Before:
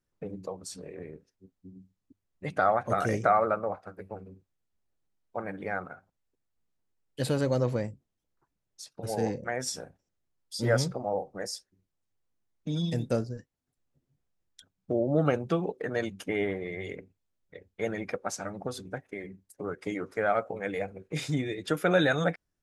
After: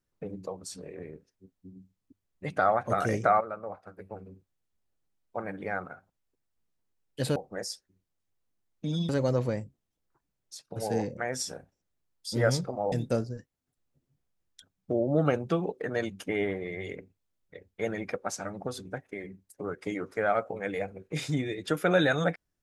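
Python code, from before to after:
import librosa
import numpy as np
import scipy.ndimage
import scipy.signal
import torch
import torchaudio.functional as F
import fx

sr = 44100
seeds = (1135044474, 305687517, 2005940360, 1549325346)

y = fx.edit(x, sr, fx.fade_in_from(start_s=3.41, length_s=0.89, floor_db=-12.5),
    fx.move(start_s=11.19, length_s=1.73, to_s=7.36), tone=tone)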